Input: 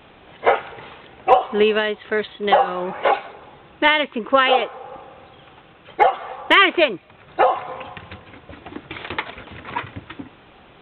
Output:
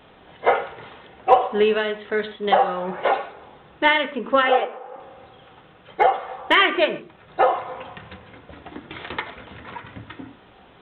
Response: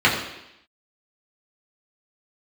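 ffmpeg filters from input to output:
-filter_complex "[0:a]asettb=1/sr,asplit=3[link_01][link_02][link_03];[link_01]atrim=end=4.424[link_04];[link_02]atrim=start=4.42:end=5,asetpts=PTS-STARTPTS,afade=type=in:duration=0.004:curve=qsin,afade=type=out:start_time=0.576:duration=0.004:curve=qsin,highpass=260,lowpass=2500[link_05];[link_03]atrim=start=4.996[link_06];[link_04][link_05]acrossfade=duration=0.004:curve1=hsin:curve2=qsin[link_07];[link_07][link_06]acrossfade=duration=0.004:curve1=qsin:curve2=hsin,asettb=1/sr,asplit=3[link_08][link_09][link_10];[link_08]atrim=end=9.204[link_11];[link_09]atrim=start=9.2:end=9.85,asetpts=PTS-STARTPTS,afade=type=in:duration=0.004:curve=qsin,afade=type=out:start_time=0.646:duration=0.004:curve=qsin,acompressor=threshold=-31dB:ratio=6[link_12];[link_10]atrim=start=9.846[link_13];[link_11][link_12]acrossfade=duration=0.004:curve1=hsin:curve2=qsin[link_14];[link_14][link_13]acrossfade=duration=0.004:curve1=qsin:curve2=hsin,asplit=2[link_15][link_16];[1:a]atrim=start_sample=2205,afade=type=out:start_time=0.2:duration=0.01,atrim=end_sample=9261,lowpass=2600[link_17];[link_16][link_17]afir=irnorm=-1:irlink=0,volume=-25.5dB[link_18];[link_15][link_18]amix=inputs=2:normalize=0,volume=-3.5dB"

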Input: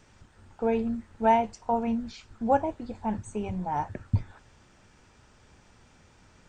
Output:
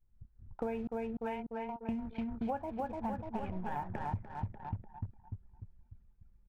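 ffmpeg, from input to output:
ffmpeg -i in.wav -filter_complex "[0:a]asettb=1/sr,asplit=3[link_01][link_02][link_03];[link_01]atrim=end=3.244[link_04];[link_02]atrim=start=3.24:end=3.76,asetpts=PTS-STARTPTS,afade=type=in:duration=0.004:curve=qsin,afade=type=out:start_time=0.516:duration=0.004:curve=qsin,aeval=exprs='if(lt(val(0),0),0.251*val(0),val(0))':channel_layout=same[link_05];[link_03]atrim=start=3.756[link_06];[link_04][link_05]acrossfade=duration=0.004:curve1=hsin:curve2=qsin[link_07];[link_07][link_06]acrossfade=duration=0.004:curve1=qsin:curve2=hsin,lowpass=frequency=3000:width=0.5412,lowpass=frequency=3000:width=1.3066,acrusher=bits=9:mix=0:aa=0.000001,asettb=1/sr,asplit=3[link_08][link_09][link_10];[link_08]atrim=end=0.874[link_11];[link_09]atrim=start=0.87:end=1.89,asetpts=PTS-STARTPTS,afade=type=in:duration=0.004:curve=qsin,afade=type=out:start_time=1.016:duration=0.004:curve=qsin,aderivative[link_12];[link_10]atrim=start=1.886[link_13];[link_11][link_12]acrossfade=duration=0.004:curve1=hsin:curve2=qsin[link_14];[link_14][link_13]acrossfade=duration=0.004:curve1=qsin:curve2=hsin,aecho=1:1:296|592|888|1184|1480|1776|2072:0.501|0.281|0.157|0.088|0.0493|0.0276|0.0155,agate=range=-33dB:threshold=-53dB:ratio=3:detection=peak,anlmdn=0.1,equalizer=frequency=350:width=0.57:gain=-4.5,acompressor=threshold=-38dB:ratio=10,volume=4.5dB" out.wav

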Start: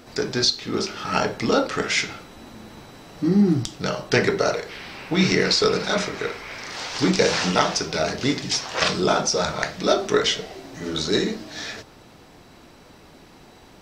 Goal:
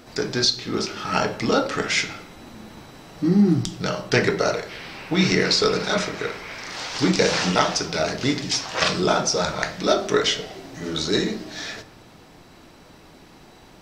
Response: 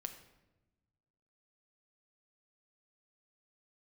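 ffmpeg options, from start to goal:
-filter_complex "[0:a]asplit=2[link_01][link_02];[link_02]equalizer=frequency=470:width_type=o:width=0.31:gain=-4[link_03];[1:a]atrim=start_sample=2205[link_04];[link_03][link_04]afir=irnorm=-1:irlink=0,volume=0.5dB[link_05];[link_01][link_05]amix=inputs=2:normalize=0,volume=-4.5dB"

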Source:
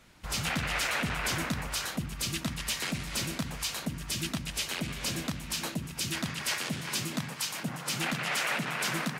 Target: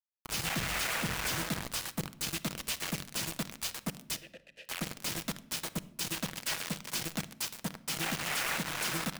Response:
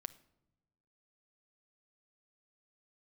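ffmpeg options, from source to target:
-filter_complex "[0:a]acrusher=bits=4:mix=0:aa=0.000001,asplit=3[link_01][link_02][link_03];[link_01]afade=type=out:start_time=4.15:duration=0.02[link_04];[link_02]asplit=3[link_05][link_06][link_07];[link_05]bandpass=frequency=530:width_type=q:width=8,volume=0dB[link_08];[link_06]bandpass=frequency=1840:width_type=q:width=8,volume=-6dB[link_09];[link_07]bandpass=frequency=2480:width_type=q:width=8,volume=-9dB[link_10];[link_08][link_09][link_10]amix=inputs=3:normalize=0,afade=type=in:start_time=4.15:duration=0.02,afade=type=out:start_time=4.65:duration=0.02[link_11];[link_03]afade=type=in:start_time=4.65:duration=0.02[link_12];[link_04][link_11][link_12]amix=inputs=3:normalize=0[link_13];[1:a]atrim=start_sample=2205[link_14];[link_13][link_14]afir=irnorm=-1:irlink=0"

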